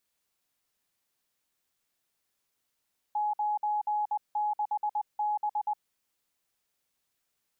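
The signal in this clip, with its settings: Morse "96B" 20 wpm 840 Hz -26 dBFS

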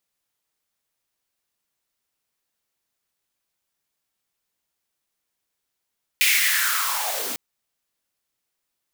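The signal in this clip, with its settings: swept filtered noise white, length 1.15 s highpass, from 2.4 kHz, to 180 Hz, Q 5.4, linear, gain ramp -9 dB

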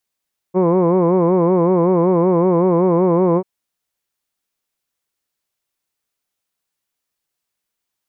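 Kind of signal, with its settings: formant-synthesis vowel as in hood, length 2.89 s, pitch 177 Hz, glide 0 st, vibrato depth 1.05 st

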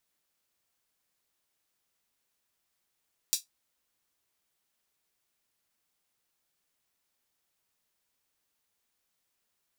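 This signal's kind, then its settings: closed hi-hat, high-pass 4.7 kHz, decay 0.15 s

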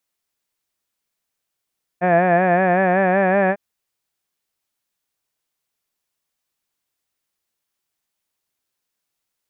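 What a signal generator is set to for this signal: formant-synthesis vowel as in had, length 1.55 s, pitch 174 Hz, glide +2 st, vibrato depth 0.75 st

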